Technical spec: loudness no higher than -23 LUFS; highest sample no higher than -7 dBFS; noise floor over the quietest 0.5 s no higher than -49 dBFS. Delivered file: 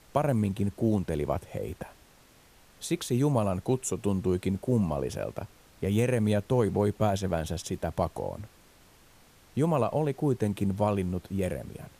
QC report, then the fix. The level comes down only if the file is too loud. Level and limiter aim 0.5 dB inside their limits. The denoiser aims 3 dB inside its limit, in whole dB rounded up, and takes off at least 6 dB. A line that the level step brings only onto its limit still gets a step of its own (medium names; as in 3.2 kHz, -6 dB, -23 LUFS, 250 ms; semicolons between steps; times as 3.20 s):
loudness -29.0 LUFS: pass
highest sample -10.5 dBFS: pass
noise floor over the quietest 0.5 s -58 dBFS: pass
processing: none needed